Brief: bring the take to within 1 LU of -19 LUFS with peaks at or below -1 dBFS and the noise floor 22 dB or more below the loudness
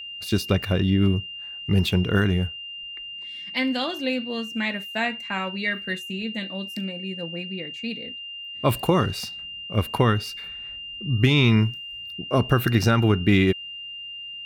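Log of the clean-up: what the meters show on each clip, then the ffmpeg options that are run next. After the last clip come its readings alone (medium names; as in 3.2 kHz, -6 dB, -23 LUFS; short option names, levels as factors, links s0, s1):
steady tone 2.8 kHz; tone level -34 dBFS; loudness -24.5 LUFS; peak level -7.5 dBFS; loudness target -19.0 LUFS
-> -af "bandreject=f=2800:w=30"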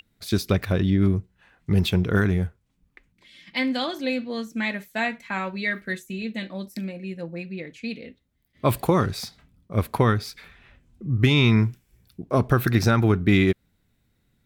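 steady tone not found; loudness -24.0 LUFS; peak level -8.0 dBFS; loudness target -19.0 LUFS
-> -af "volume=1.78"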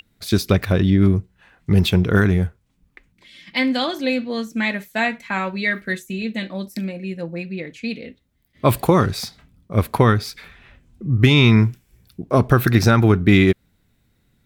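loudness -19.0 LUFS; peak level -3.0 dBFS; noise floor -64 dBFS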